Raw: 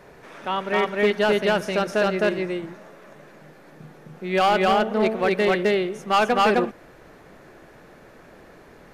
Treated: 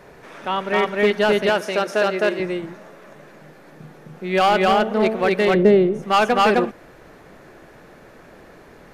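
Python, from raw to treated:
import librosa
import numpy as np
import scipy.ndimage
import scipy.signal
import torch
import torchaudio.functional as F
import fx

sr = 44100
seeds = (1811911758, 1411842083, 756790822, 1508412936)

y = fx.highpass(x, sr, hz=270.0, slope=12, at=(1.49, 2.4))
y = fx.tilt_shelf(y, sr, db=9.5, hz=810.0, at=(5.53, 6.02), fade=0.02)
y = F.gain(torch.from_numpy(y), 2.5).numpy()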